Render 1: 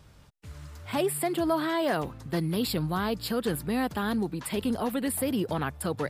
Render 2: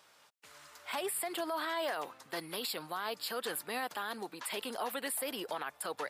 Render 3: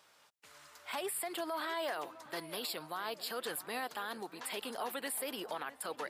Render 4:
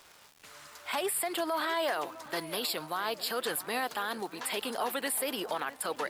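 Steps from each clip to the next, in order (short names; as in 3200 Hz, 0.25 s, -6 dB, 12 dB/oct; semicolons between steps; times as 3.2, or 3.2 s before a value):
HPF 690 Hz 12 dB/oct; limiter -27 dBFS, peak gain reduction 9 dB
darkening echo 0.657 s, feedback 57%, low-pass 1800 Hz, level -15.5 dB; gain -2 dB
crackle 410/s -51 dBFS; gain +6.5 dB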